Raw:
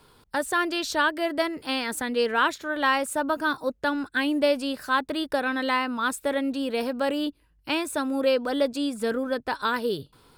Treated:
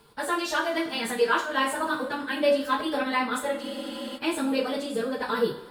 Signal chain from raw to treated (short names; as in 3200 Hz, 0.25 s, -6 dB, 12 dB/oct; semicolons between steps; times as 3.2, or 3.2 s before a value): plain phase-vocoder stretch 0.55×; two-slope reverb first 0.4 s, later 2.3 s, from -18 dB, DRR 0 dB; spectral freeze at 3.64, 0.52 s